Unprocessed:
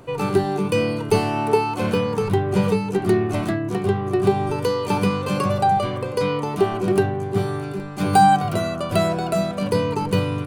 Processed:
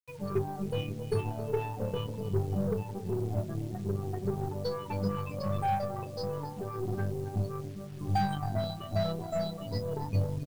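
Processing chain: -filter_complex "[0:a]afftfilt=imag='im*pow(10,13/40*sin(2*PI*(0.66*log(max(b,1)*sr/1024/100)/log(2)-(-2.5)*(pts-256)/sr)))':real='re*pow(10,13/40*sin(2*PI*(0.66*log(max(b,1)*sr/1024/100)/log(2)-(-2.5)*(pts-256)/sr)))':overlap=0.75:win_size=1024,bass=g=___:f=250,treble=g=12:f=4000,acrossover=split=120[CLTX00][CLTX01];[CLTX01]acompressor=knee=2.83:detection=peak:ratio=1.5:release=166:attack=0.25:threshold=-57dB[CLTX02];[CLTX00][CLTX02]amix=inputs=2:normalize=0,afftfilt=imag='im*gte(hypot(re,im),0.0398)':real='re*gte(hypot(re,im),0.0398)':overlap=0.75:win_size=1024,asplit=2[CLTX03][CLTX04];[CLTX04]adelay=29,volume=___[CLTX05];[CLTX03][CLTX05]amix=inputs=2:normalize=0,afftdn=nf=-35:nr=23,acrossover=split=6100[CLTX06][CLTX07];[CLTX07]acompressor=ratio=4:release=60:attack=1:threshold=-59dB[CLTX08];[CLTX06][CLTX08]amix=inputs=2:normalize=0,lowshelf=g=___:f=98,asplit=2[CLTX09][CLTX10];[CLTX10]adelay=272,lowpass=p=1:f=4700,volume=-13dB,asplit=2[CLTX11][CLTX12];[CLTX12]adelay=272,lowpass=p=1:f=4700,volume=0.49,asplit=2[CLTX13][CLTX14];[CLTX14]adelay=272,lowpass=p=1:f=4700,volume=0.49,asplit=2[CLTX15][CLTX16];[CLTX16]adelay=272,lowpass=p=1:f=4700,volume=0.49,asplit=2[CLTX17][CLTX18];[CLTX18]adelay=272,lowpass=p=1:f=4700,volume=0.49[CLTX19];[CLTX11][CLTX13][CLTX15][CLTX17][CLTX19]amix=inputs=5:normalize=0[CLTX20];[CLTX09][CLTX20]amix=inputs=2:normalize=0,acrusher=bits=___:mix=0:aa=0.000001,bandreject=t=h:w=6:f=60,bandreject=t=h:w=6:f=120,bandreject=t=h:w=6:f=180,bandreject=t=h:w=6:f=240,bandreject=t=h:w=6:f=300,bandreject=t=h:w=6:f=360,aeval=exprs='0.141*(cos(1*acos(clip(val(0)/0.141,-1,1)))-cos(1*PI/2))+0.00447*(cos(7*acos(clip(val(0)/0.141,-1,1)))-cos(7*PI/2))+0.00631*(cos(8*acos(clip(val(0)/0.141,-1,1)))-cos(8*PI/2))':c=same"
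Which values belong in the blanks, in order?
-1, -7.5dB, -9, 8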